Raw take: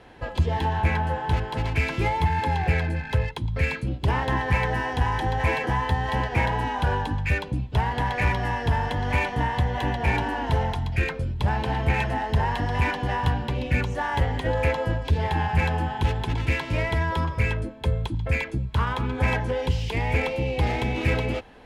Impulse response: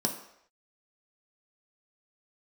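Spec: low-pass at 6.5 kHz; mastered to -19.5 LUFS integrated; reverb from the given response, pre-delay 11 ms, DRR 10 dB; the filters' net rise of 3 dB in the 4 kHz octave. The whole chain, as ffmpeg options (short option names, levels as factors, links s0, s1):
-filter_complex "[0:a]lowpass=6500,equalizer=f=4000:t=o:g=4.5,asplit=2[s0][s1];[1:a]atrim=start_sample=2205,adelay=11[s2];[s1][s2]afir=irnorm=-1:irlink=0,volume=0.158[s3];[s0][s3]amix=inputs=2:normalize=0,volume=1.78"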